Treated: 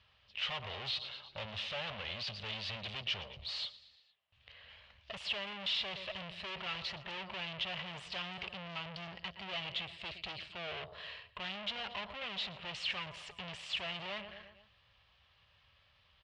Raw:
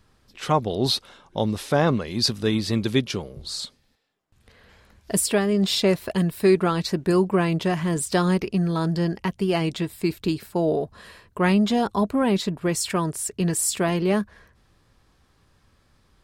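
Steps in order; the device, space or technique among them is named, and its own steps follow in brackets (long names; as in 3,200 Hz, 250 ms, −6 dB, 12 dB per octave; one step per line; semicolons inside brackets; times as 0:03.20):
repeating echo 116 ms, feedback 56%, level −21 dB
scooped metal amplifier (tube saturation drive 36 dB, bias 0.7; loudspeaker in its box 81–3,700 Hz, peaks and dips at 150 Hz −3 dB, 590 Hz +7 dB, 1,500 Hz −5 dB, 2,900 Hz +8 dB; guitar amp tone stack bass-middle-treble 10-0-10)
level +7 dB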